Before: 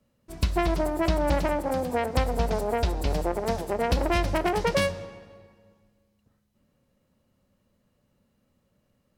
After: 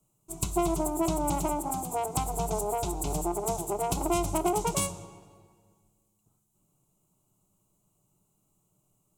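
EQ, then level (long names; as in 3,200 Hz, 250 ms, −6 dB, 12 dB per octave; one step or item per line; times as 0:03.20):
high shelf with overshoot 6,000 Hz +7.5 dB, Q 3
phaser with its sweep stopped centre 350 Hz, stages 8
0.0 dB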